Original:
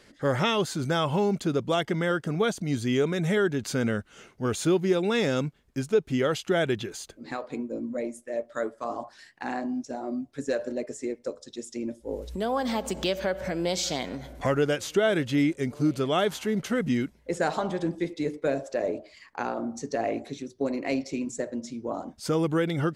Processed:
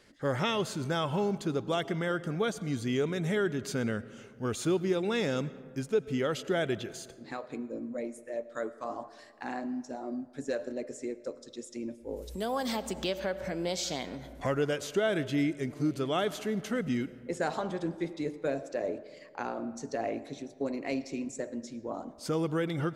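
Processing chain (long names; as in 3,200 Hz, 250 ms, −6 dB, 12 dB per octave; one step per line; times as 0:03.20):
0:12.16–0:12.75: high-shelf EQ 6,600 Hz → 4,000 Hz +11.5 dB
comb and all-pass reverb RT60 2.1 s, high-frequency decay 0.4×, pre-delay 60 ms, DRR 16.5 dB
level −5 dB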